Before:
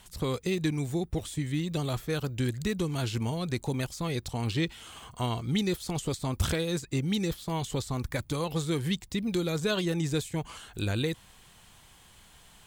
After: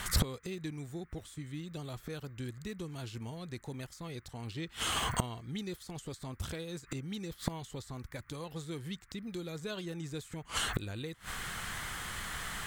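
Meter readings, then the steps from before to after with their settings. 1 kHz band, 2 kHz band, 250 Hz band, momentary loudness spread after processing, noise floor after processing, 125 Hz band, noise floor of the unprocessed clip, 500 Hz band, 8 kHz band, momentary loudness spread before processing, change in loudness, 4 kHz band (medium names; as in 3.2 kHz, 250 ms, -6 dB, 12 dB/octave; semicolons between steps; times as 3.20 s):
-3.5 dB, -3.0 dB, -10.5 dB, 10 LU, -58 dBFS, -9.5 dB, -56 dBFS, -10.5 dB, -1.5 dB, 5 LU, -8.5 dB, -4.0 dB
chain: band noise 1.1–2.1 kHz -58 dBFS; inverted gate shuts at -31 dBFS, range -25 dB; trim +13.5 dB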